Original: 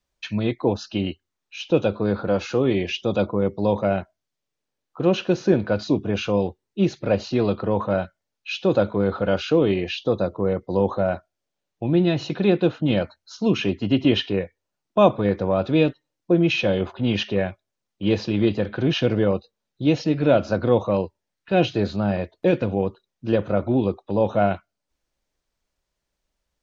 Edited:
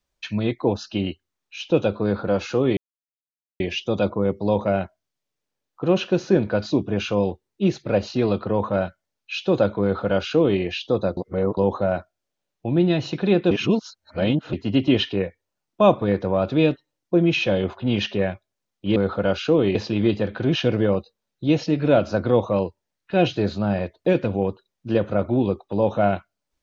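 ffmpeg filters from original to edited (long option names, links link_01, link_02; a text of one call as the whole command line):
ffmpeg -i in.wav -filter_complex "[0:a]asplit=8[link_01][link_02][link_03][link_04][link_05][link_06][link_07][link_08];[link_01]atrim=end=2.77,asetpts=PTS-STARTPTS,afade=type=out:start_time=2.766:duration=0.004:curve=hsin,apad=pad_dur=0.83[link_09];[link_02]atrim=start=2.77:end=10.342,asetpts=PTS-STARTPTS,afade=type=in:duration=0.004:curve=hsin[link_10];[link_03]atrim=start=10.338:end=10.742,asetpts=PTS-STARTPTS,areverse[link_11];[link_04]atrim=start=10.738:end=12.682[link_12];[link_05]atrim=start=12.678:end=13.702,asetpts=PTS-STARTPTS,areverse[link_13];[link_06]atrim=start=13.698:end=18.132[link_14];[link_07]atrim=start=8.988:end=9.782[link_15];[link_08]atrim=start=18.128[link_16];[link_09][link_10]concat=n=2:v=0:a=1[link_17];[link_17][link_11]acrossfade=duration=0.004:curve1=hsin:curve2=hsin[link_18];[link_18][link_12]acrossfade=duration=0.004:curve1=hsin:curve2=hsin[link_19];[link_19][link_13]acrossfade=duration=0.004:curve1=hsin:curve2=hsin[link_20];[link_20][link_14]acrossfade=duration=0.004:curve1=hsin:curve2=hsin[link_21];[link_21][link_15]acrossfade=duration=0.004:curve1=hsin:curve2=hsin[link_22];[link_22][link_16]acrossfade=duration=0.004:curve1=hsin:curve2=hsin" out.wav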